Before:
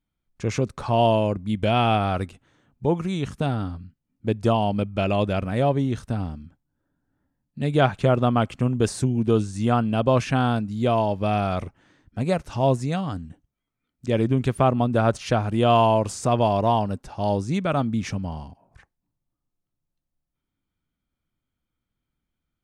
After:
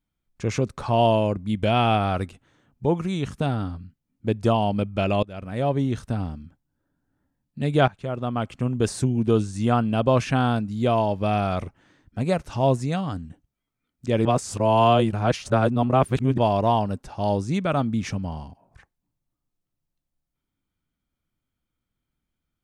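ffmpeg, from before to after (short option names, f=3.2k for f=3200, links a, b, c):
-filter_complex "[0:a]asplit=5[a][b][c][d][e];[a]atrim=end=5.23,asetpts=PTS-STARTPTS,afade=t=out:st=5.226:d=0.004:c=hsin:silence=0.0630957[f];[b]atrim=start=5.23:end=7.88,asetpts=PTS-STARTPTS,afade=t=in:d=0.59:silence=0.0630957,afade=t=out:st=2.646:d=0.004:c=hsin:silence=0.141254[g];[c]atrim=start=7.88:end=14.252,asetpts=PTS-STARTPTS,afade=t=in:d=1.1:silence=0.141254[h];[d]atrim=start=14.248:end=16.382,asetpts=PTS-STARTPTS,areverse[i];[e]atrim=start=16.378[j];[f][g][h]concat=n=3:v=0:a=1[k];[k][i]acrossfade=d=0.004:c1=hsin:c2=hsin[l];[l][j]acrossfade=d=0.004:c1=hsin:c2=hsin"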